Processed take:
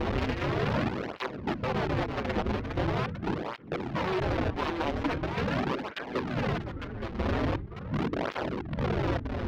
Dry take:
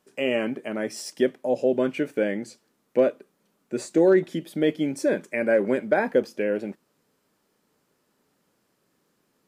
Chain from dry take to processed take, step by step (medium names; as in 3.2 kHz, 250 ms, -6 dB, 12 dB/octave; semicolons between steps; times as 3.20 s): median filter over 9 samples; wind noise 180 Hz -21 dBFS; high-order bell 790 Hz -14.5 dB 1.3 oct; in parallel at +3 dB: compression 16:1, threshold -32 dBFS, peak gain reduction 27.5 dB; on the sum: peak limiter -15 dBFS, peak gain reduction 16 dB; level held to a coarse grid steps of 12 dB; integer overflow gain 20 dB; ever faster or slower copies 126 ms, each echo -2 st, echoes 2, each echo -6 dB; distance through air 260 m; on a send: filtered feedback delay 520 ms, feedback 28%, low-pass 1.6 kHz, level -14 dB; on the sum: cancelling through-zero flanger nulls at 0.42 Hz, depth 7.2 ms